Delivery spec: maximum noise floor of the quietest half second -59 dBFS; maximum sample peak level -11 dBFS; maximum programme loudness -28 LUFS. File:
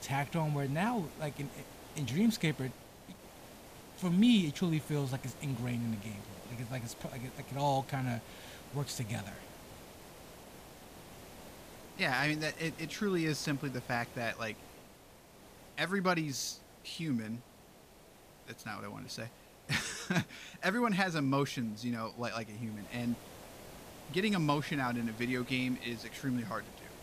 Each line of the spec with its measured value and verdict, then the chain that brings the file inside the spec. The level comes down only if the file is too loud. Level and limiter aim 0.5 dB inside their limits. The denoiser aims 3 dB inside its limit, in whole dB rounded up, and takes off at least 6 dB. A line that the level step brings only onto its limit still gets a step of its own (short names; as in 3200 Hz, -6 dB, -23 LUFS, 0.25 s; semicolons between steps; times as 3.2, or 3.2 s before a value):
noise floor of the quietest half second -58 dBFS: fail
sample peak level -16.5 dBFS: OK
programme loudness -35.0 LUFS: OK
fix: denoiser 6 dB, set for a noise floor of -58 dBFS